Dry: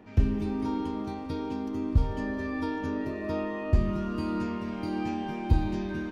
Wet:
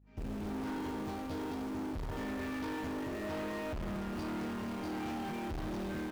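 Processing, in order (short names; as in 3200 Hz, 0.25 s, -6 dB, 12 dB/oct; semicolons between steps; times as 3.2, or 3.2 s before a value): opening faded in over 0.62 s; hum 50 Hz, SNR 32 dB; tube stage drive 40 dB, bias 0.35; in parallel at -9 dB: bit-crush 7-bit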